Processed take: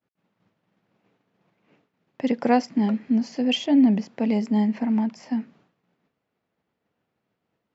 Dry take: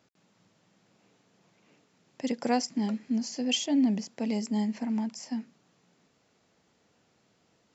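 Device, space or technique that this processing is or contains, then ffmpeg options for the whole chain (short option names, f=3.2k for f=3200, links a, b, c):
hearing-loss simulation: -af "lowpass=2.7k,agate=range=-33dB:threshold=-58dB:ratio=3:detection=peak,volume=7.5dB"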